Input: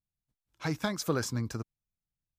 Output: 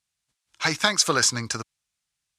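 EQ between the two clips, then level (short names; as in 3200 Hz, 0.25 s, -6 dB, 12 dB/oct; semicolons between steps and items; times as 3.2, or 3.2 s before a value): HPF 44 Hz; LPF 10000 Hz 24 dB/oct; tilt shelf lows -9.5 dB, about 720 Hz; +8.5 dB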